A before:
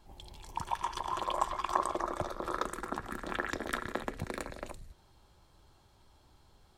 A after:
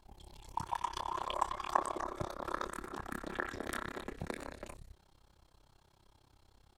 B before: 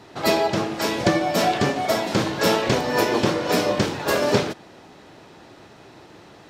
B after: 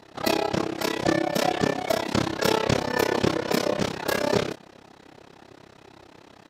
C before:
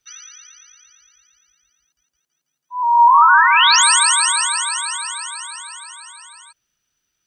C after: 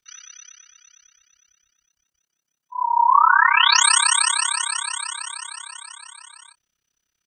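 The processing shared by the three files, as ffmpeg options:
-filter_complex "[0:a]asplit=2[a][b];[b]adelay=25,volume=-7.5dB[c];[a][c]amix=inputs=2:normalize=0,tremolo=f=33:d=0.947"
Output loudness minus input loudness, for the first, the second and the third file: -3.0, -3.5, -4.0 LU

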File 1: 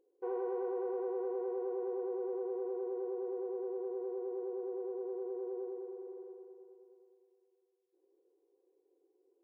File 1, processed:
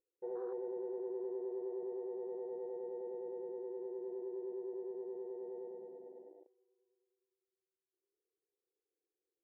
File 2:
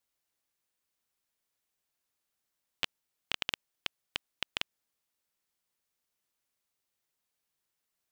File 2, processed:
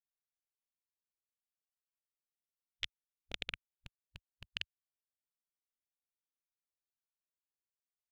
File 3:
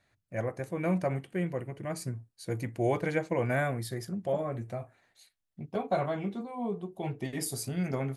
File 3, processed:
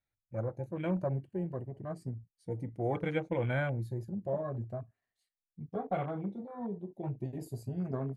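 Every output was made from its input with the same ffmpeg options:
-af "afftfilt=real='re*pow(10,7/40*sin(2*PI*(1.4*log(max(b,1)*sr/1024/100)/log(2)-(0.32)*(pts-256)/sr)))':imag='im*pow(10,7/40*sin(2*PI*(1.4*log(max(b,1)*sr/1024/100)/log(2)-(0.32)*(pts-256)/sr)))':win_size=1024:overlap=0.75,lowshelf=f=100:g=10.5,afwtdn=0.0126,volume=-5.5dB"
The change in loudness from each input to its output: -4.5, -6.0, -3.5 LU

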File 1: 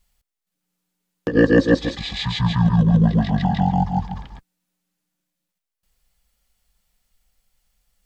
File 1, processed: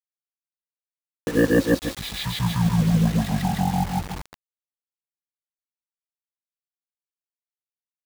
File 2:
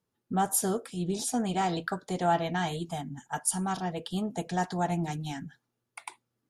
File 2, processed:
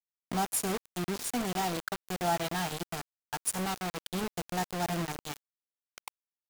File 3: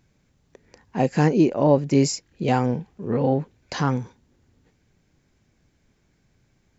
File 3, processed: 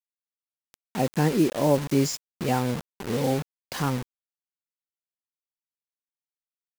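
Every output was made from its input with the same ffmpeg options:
-af "acrusher=bits=4:mix=0:aa=0.000001,volume=-4dB"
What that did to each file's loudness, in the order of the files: -4.0, -3.0, -3.5 LU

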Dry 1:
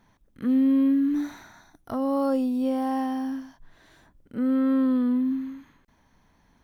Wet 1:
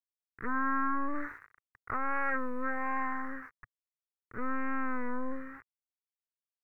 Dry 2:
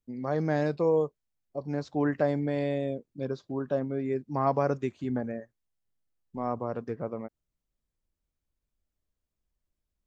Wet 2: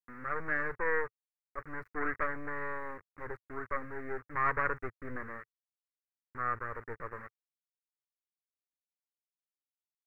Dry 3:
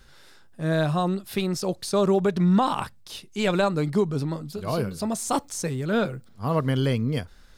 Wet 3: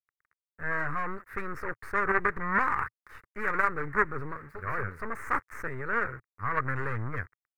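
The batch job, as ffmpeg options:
-af "aeval=exprs='val(0)*gte(abs(val(0)),0.00841)':c=same,aeval=exprs='0.237*(cos(1*acos(clip(val(0)/0.237,-1,1)))-cos(1*PI/2))+0.0944*(cos(3*acos(clip(val(0)/0.237,-1,1)))-cos(3*PI/2))+0.0422*(cos(5*acos(clip(val(0)/0.237,-1,1)))-cos(5*PI/2))+0.0211*(cos(8*acos(clip(val(0)/0.237,-1,1)))-cos(8*PI/2))':c=same,firequalizer=gain_entry='entry(110,0);entry(170,-12);entry(440,-3);entry(670,-12);entry(1200,9);entry(1900,10);entry(3100,-26);entry(13000,-17)':delay=0.05:min_phase=1,volume=-1dB"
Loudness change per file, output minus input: -10.0, -6.0, -6.0 LU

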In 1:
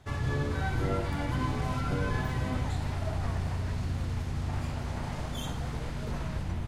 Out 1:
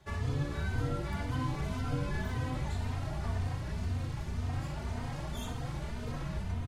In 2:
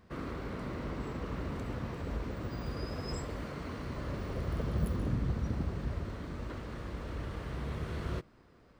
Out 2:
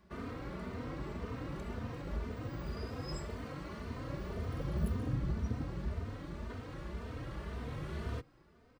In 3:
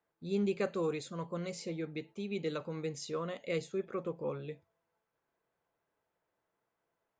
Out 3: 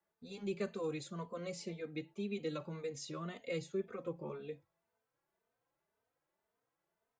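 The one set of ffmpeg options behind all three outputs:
-filter_complex "[0:a]acrossover=split=270|3000[a][b][c];[b]acompressor=threshold=-35dB:ratio=6[d];[a][d][c]amix=inputs=3:normalize=0,asplit=2[e][f];[f]adelay=3.1,afreqshift=1.9[g];[e][g]amix=inputs=2:normalize=1"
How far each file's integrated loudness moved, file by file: -3.5, -3.0, -5.0 LU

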